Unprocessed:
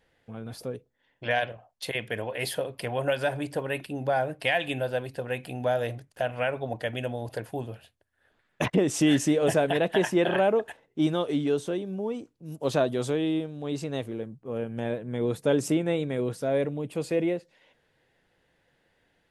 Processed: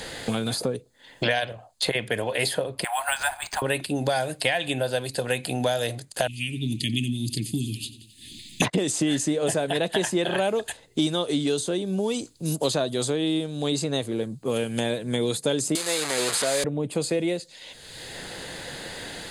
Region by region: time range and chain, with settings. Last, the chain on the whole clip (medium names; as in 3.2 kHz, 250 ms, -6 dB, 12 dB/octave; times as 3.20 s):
2.84–3.62 s: steep high-pass 720 Hz 72 dB/octave + careless resampling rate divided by 4×, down none, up hold
6.27–8.62 s: inverse Chebyshev band-stop 480–1600 Hz + feedback delay 88 ms, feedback 51%, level -18 dB
15.75–16.64 s: one-bit delta coder 64 kbps, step -27.5 dBFS + high-pass 390 Hz 6 dB/octave + tilt EQ +3.5 dB/octave
whole clip: high-order bell 6.2 kHz +11.5 dB; band-stop 5.6 kHz, Q 5.2; three bands compressed up and down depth 100%; trim +1 dB